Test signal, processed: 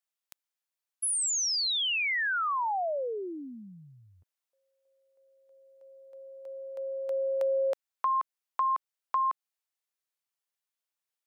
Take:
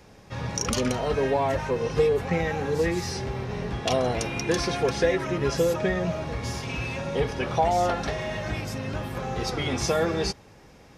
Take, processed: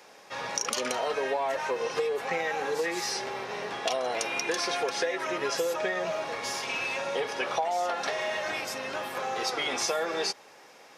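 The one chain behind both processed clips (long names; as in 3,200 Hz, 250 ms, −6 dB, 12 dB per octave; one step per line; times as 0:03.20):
high-pass filter 560 Hz 12 dB per octave
downward compressor 6 to 1, threshold −29 dBFS
level +3.5 dB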